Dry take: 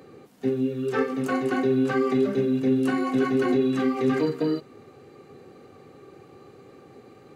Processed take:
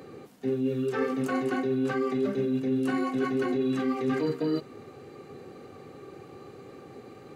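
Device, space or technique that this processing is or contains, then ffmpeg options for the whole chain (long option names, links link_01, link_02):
compression on the reversed sound: -af "areverse,acompressor=threshold=-27dB:ratio=6,areverse,volume=2.5dB"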